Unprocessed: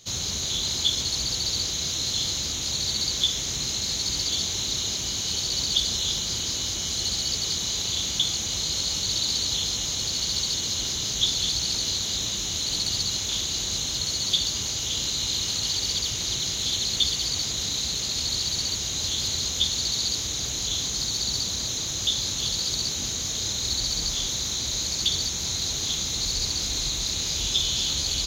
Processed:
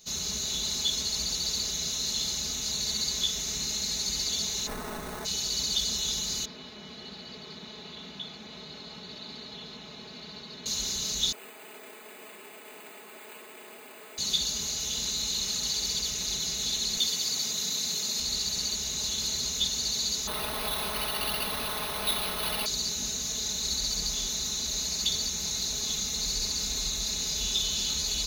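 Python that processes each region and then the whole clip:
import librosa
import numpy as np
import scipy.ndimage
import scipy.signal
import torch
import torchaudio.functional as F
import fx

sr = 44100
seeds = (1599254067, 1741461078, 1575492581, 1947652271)

y = fx.envelope_flatten(x, sr, power=0.6, at=(4.66, 5.24), fade=0.02)
y = fx.peak_eq(y, sr, hz=11000.0, db=-4.0, octaves=0.77, at=(4.66, 5.24), fade=0.02)
y = fx.running_max(y, sr, window=17, at=(4.66, 5.24), fade=0.02)
y = fx.chain(y, sr, fx.highpass(hz=160.0, slope=12),
    fx.air_absorb(metres=430.0), at=(6.45, 10.66))
y = fx.chain(y, sr, fx.highpass(hz=320.0, slope=24),
    fx.resample_bad(factor=8, down='filtered', up='hold'), at=(11.32, 14.18))
y = fx.chain(y, sr, fx.highpass(hz=140.0, slope=12),
    fx.high_shelf(hz=12000.0, db=6.5), at=(16.97, 18.2))
y = fx.chain(y, sr, fx.cvsd(bps=64000),
    fx.resample_bad(factor=6, down='none', up='hold'), at=(20.27, 22.66))
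y = fx.high_shelf(y, sr, hz=12000.0, db=9.5)
y = fx.notch(y, sr, hz=3200.0, q=11.0)
y = y + 0.85 * np.pad(y, (int(4.7 * sr / 1000.0), 0))[:len(y)]
y = y * librosa.db_to_amplitude(-6.5)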